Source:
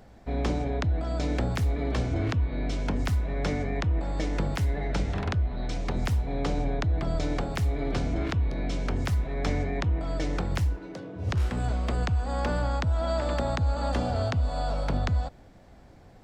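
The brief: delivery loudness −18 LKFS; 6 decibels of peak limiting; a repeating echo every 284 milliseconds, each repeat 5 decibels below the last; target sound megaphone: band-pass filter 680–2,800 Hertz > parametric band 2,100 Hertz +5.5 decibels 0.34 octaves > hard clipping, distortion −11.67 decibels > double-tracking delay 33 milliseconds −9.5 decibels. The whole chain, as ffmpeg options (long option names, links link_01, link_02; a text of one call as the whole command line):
ffmpeg -i in.wav -filter_complex "[0:a]alimiter=limit=-20.5dB:level=0:latency=1,highpass=680,lowpass=2800,equalizer=frequency=2100:width_type=o:width=0.34:gain=5.5,aecho=1:1:284|568|852|1136|1420|1704|1988:0.562|0.315|0.176|0.0988|0.0553|0.031|0.0173,asoftclip=type=hard:threshold=-33dB,asplit=2[link_01][link_02];[link_02]adelay=33,volume=-9.5dB[link_03];[link_01][link_03]amix=inputs=2:normalize=0,volume=21dB" out.wav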